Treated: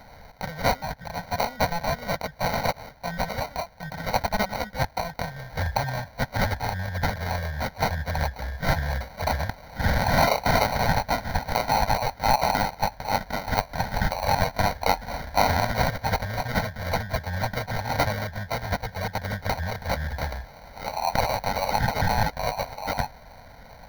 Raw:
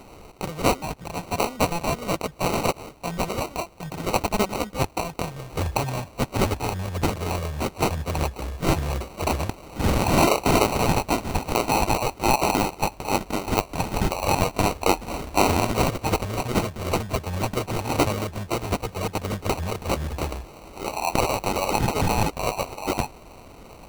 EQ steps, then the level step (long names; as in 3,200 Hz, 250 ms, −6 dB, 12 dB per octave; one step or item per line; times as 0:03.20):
parametric band 1,600 Hz +12 dB 0.67 octaves
phaser with its sweep stopped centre 1,800 Hz, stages 8
0.0 dB